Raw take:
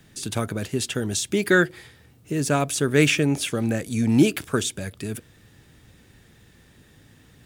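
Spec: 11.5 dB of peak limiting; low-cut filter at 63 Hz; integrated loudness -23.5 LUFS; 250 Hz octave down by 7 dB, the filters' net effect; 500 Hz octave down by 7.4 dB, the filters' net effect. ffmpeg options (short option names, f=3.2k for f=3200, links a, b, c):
-af "highpass=63,equalizer=f=250:t=o:g=-7,equalizer=f=500:t=o:g=-7,volume=7dB,alimiter=limit=-12dB:level=0:latency=1"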